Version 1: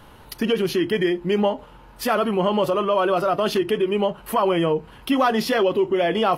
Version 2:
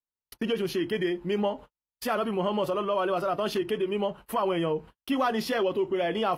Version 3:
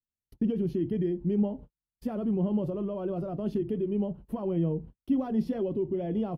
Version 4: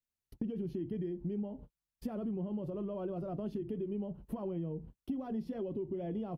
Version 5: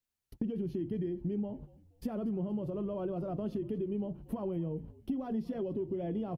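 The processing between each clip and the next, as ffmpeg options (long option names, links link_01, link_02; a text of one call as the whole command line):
ffmpeg -i in.wav -af "agate=range=-52dB:threshold=-35dB:ratio=16:detection=peak,volume=-7dB" out.wav
ffmpeg -i in.wav -af "firequalizer=gain_entry='entry(150,0);entry(440,-13);entry(1200,-29)':delay=0.05:min_phase=1,volume=7.5dB" out.wav
ffmpeg -i in.wav -af "acompressor=threshold=-35dB:ratio=6" out.wav
ffmpeg -i in.wav -filter_complex "[0:a]asplit=4[link_01][link_02][link_03][link_04];[link_02]adelay=236,afreqshift=-59,volume=-20.5dB[link_05];[link_03]adelay=472,afreqshift=-118,volume=-28.9dB[link_06];[link_04]adelay=708,afreqshift=-177,volume=-37.3dB[link_07];[link_01][link_05][link_06][link_07]amix=inputs=4:normalize=0,volume=2.5dB" out.wav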